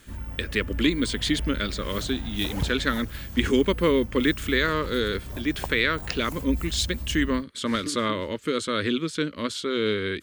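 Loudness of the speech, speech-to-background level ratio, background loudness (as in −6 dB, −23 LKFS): −26.0 LKFS, 9.5 dB, −35.5 LKFS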